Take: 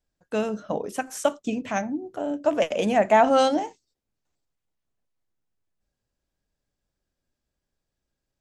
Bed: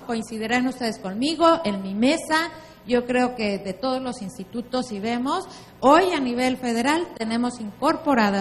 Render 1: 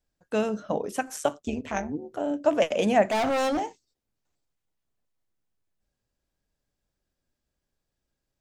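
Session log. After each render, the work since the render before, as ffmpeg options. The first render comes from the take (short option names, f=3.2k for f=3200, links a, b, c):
-filter_complex "[0:a]asettb=1/sr,asplit=3[a][b][c];[a]atrim=end=1.164[d];[b]atrim=start=1.16:end=2.12,asetpts=PTS-STARTPTS,afade=t=in:d=0.004:c=qsin,afade=t=out:st=0.956:d=0.004:c=qsin,tremolo=f=150:d=0.71[e];[c]atrim=start=2.116[f];[d][e]acrossfade=d=0.004:c1=hsin:c2=qsin[g];[g][f]acrossfade=d=0.004:c1=qsin:c2=hsin,asettb=1/sr,asplit=3[h][i][j];[h]atrim=end=3.094[k];[i]atrim=start=3.09:end=3.61,asetpts=PTS-STARTPTS,afade=t=in:d=0.004:c=qsin,afade=t=out:st=0.516:d=0.004:c=qsin,volume=23dB,asoftclip=hard,volume=-23dB[l];[j]atrim=start=3.606[m];[k][l]acrossfade=d=0.004:c1=hsin:c2=qsin[n];[n][m]acrossfade=d=0.004:c1=qsin:c2=hsin"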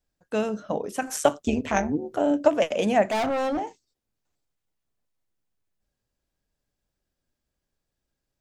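-filter_complex "[0:a]asettb=1/sr,asplit=3[a][b][c];[a]atrim=end=1.024[d];[b]atrim=start=1.02:end=2.48,asetpts=PTS-STARTPTS,afade=t=in:d=0.004:c=qsin,afade=t=out:st=1.456:d=0.004:c=qsin,acontrast=55[e];[c]atrim=start=2.476[f];[d][e]acrossfade=d=0.004:c1=hsin:c2=qsin[g];[g][f]acrossfade=d=0.004:c1=qsin:c2=hsin,asettb=1/sr,asplit=3[h][i][j];[h]atrim=end=3.264[k];[i]atrim=start=3.26:end=3.67,asetpts=PTS-STARTPTS,afade=t=in:d=0.004:c=qsin,afade=t=out:st=0.406:d=0.004:c=qsin,highshelf=f=3.1k:g=-11.5[l];[j]atrim=start=3.666[m];[k][l]acrossfade=d=0.004:c1=hsin:c2=qsin[n];[n][m]acrossfade=d=0.004:c1=qsin:c2=hsin"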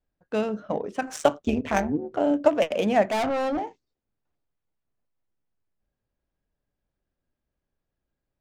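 -af "adynamicsmooth=sensitivity=5:basefreq=2.8k"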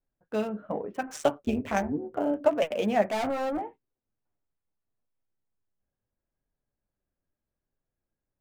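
-filter_complex "[0:a]flanger=delay=7.3:depth=3.9:regen=-47:speed=0.77:shape=triangular,acrossover=split=2600[a][b];[b]aeval=exprs='val(0)*gte(abs(val(0)),0.00282)':c=same[c];[a][c]amix=inputs=2:normalize=0"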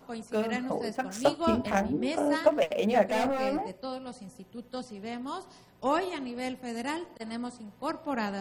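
-filter_complex "[1:a]volume=-12.5dB[a];[0:a][a]amix=inputs=2:normalize=0"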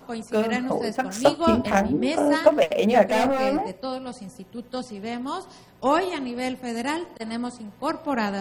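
-af "volume=6.5dB"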